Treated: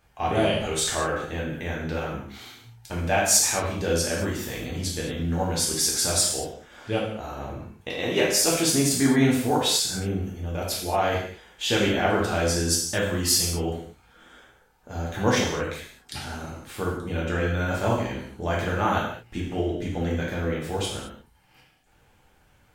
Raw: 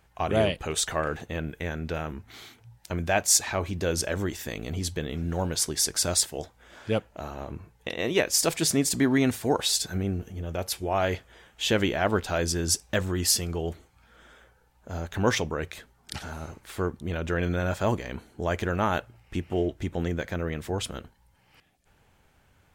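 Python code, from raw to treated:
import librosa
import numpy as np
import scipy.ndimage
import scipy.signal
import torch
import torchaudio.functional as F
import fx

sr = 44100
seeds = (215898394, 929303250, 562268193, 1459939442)

y = fx.rev_gated(x, sr, seeds[0], gate_ms=250, shape='falling', drr_db=-4.5)
y = y * librosa.db_to_amplitude(-3.0)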